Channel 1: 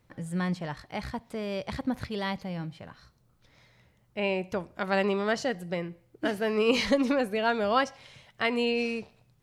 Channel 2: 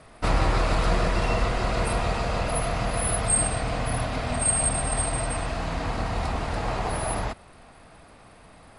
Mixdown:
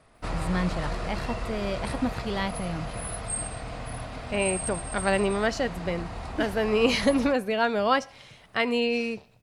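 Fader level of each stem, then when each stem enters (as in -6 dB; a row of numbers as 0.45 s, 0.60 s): +2.0 dB, -9.0 dB; 0.15 s, 0.00 s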